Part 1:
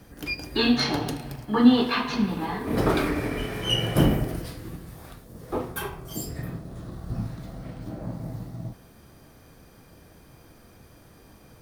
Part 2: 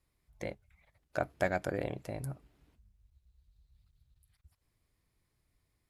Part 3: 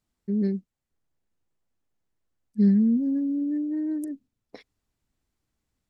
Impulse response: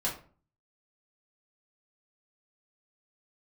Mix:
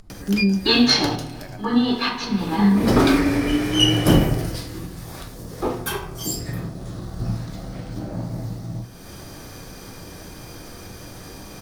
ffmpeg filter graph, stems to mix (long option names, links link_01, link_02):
-filter_complex "[0:a]adelay=100,volume=2.5dB,asplit=2[link_01][link_02];[link_02]volume=-12dB[link_03];[1:a]volume=-14dB,asplit=2[link_04][link_05];[2:a]lowpass=1300,aemphasis=mode=reproduction:type=bsi,acompressor=threshold=-18dB:ratio=6,volume=-2dB,asplit=2[link_06][link_07];[link_07]volume=-9dB[link_08];[link_05]apad=whole_len=516817[link_09];[link_01][link_09]sidechaincompress=threshold=-58dB:ratio=8:attack=6.4:release=191[link_10];[3:a]atrim=start_sample=2205[link_11];[link_03][link_08]amix=inputs=2:normalize=0[link_12];[link_12][link_11]afir=irnorm=-1:irlink=0[link_13];[link_10][link_04][link_06][link_13]amix=inputs=4:normalize=0,acompressor=mode=upward:threshold=-29dB:ratio=2.5,equalizer=frequency=5600:width=0.98:gain=7.5"